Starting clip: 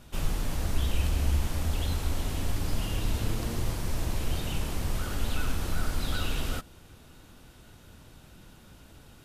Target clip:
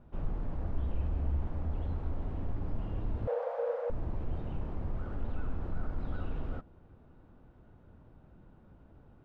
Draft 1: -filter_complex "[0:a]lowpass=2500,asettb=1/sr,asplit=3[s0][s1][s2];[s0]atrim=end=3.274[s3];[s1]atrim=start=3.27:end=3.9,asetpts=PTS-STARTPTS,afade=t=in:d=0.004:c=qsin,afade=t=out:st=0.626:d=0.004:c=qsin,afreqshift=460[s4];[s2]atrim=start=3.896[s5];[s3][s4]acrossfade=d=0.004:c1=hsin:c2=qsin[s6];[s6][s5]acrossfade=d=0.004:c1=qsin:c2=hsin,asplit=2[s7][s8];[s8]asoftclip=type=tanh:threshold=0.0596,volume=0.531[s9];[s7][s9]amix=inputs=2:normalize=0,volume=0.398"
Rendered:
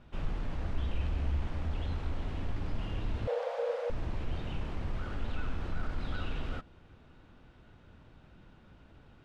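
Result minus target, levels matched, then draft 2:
2 kHz band +8.0 dB
-filter_complex "[0:a]lowpass=980,asettb=1/sr,asplit=3[s0][s1][s2];[s0]atrim=end=3.274[s3];[s1]atrim=start=3.27:end=3.9,asetpts=PTS-STARTPTS,afade=t=in:d=0.004:c=qsin,afade=t=out:st=0.626:d=0.004:c=qsin,afreqshift=460[s4];[s2]atrim=start=3.896[s5];[s3][s4]acrossfade=d=0.004:c1=hsin:c2=qsin[s6];[s6][s5]acrossfade=d=0.004:c1=qsin:c2=hsin,asplit=2[s7][s8];[s8]asoftclip=type=tanh:threshold=0.0596,volume=0.531[s9];[s7][s9]amix=inputs=2:normalize=0,volume=0.398"

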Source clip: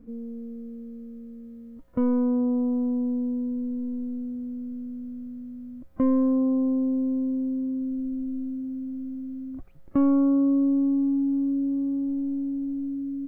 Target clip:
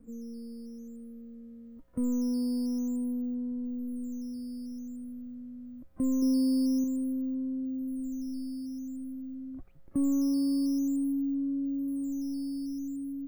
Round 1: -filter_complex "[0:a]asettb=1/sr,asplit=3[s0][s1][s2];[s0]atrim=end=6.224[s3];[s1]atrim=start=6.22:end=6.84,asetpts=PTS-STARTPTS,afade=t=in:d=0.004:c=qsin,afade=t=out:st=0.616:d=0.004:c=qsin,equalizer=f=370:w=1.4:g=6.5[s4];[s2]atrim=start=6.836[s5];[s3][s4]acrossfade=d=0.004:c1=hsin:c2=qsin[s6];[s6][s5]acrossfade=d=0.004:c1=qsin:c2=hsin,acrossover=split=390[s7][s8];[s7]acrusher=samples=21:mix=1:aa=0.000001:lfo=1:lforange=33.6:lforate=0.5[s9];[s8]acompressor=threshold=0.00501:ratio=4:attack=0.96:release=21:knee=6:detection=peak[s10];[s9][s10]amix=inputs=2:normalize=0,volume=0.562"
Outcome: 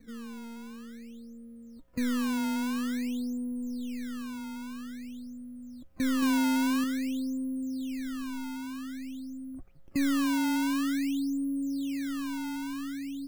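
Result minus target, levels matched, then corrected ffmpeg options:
decimation with a swept rate: distortion +14 dB
-filter_complex "[0:a]asettb=1/sr,asplit=3[s0][s1][s2];[s0]atrim=end=6.224[s3];[s1]atrim=start=6.22:end=6.84,asetpts=PTS-STARTPTS,afade=t=in:d=0.004:c=qsin,afade=t=out:st=0.616:d=0.004:c=qsin,equalizer=f=370:w=1.4:g=6.5[s4];[s2]atrim=start=6.836[s5];[s3][s4]acrossfade=d=0.004:c1=hsin:c2=qsin[s6];[s6][s5]acrossfade=d=0.004:c1=qsin:c2=hsin,acrossover=split=390[s7][s8];[s7]acrusher=samples=5:mix=1:aa=0.000001:lfo=1:lforange=8:lforate=0.5[s9];[s8]acompressor=threshold=0.00501:ratio=4:attack=0.96:release=21:knee=6:detection=peak[s10];[s9][s10]amix=inputs=2:normalize=0,volume=0.562"

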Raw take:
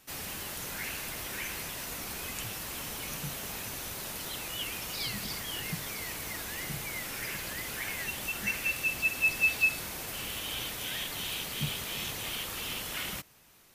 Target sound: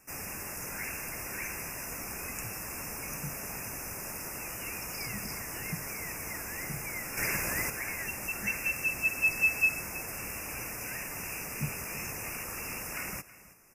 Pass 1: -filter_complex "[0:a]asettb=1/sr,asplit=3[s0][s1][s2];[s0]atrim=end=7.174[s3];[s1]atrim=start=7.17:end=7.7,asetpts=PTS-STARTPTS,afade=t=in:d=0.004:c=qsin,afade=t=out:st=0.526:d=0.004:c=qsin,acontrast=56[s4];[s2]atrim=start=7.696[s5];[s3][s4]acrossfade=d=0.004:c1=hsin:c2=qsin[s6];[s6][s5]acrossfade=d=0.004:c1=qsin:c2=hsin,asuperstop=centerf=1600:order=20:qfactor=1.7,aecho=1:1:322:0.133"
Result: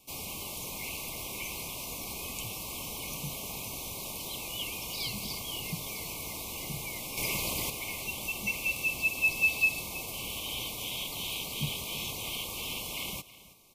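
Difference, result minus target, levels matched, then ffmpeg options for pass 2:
4 kHz band +10.0 dB
-filter_complex "[0:a]asettb=1/sr,asplit=3[s0][s1][s2];[s0]atrim=end=7.174[s3];[s1]atrim=start=7.17:end=7.7,asetpts=PTS-STARTPTS,afade=t=in:d=0.004:c=qsin,afade=t=out:st=0.526:d=0.004:c=qsin,acontrast=56[s4];[s2]atrim=start=7.696[s5];[s3][s4]acrossfade=d=0.004:c1=hsin:c2=qsin[s6];[s6][s5]acrossfade=d=0.004:c1=qsin:c2=hsin,asuperstop=centerf=3700:order=20:qfactor=1.7,aecho=1:1:322:0.133"

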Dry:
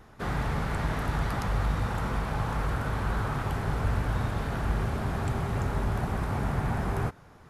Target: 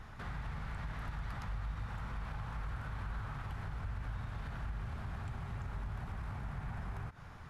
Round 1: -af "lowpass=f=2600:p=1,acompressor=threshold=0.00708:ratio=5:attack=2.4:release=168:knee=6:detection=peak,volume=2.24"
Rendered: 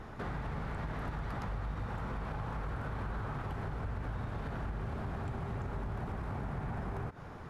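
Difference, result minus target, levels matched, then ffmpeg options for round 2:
500 Hz band +7.5 dB
-af "lowpass=f=2600:p=1,acompressor=threshold=0.00708:ratio=5:attack=2.4:release=168:knee=6:detection=peak,equalizer=f=390:t=o:w=2.2:g=-13,volume=2.24"

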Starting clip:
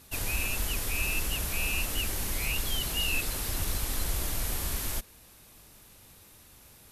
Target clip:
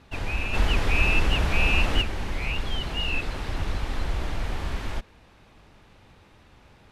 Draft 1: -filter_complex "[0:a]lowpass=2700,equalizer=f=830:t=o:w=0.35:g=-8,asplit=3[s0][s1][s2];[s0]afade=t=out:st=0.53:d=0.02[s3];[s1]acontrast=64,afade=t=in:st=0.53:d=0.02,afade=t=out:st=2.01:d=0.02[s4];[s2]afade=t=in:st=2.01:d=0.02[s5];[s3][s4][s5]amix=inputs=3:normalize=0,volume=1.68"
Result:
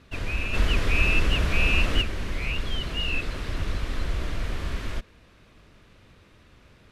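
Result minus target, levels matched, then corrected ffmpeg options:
1 kHz band -3.5 dB
-filter_complex "[0:a]lowpass=2700,equalizer=f=830:t=o:w=0.35:g=2.5,asplit=3[s0][s1][s2];[s0]afade=t=out:st=0.53:d=0.02[s3];[s1]acontrast=64,afade=t=in:st=0.53:d=0.02,afade=t=out:st=2.01:d=0.02[s4];[s2]afade=t=in:st=2.01:d=0.02[s5];[s3][s4][s5]amix=inputs=3:normalize=0,volume=1.68"

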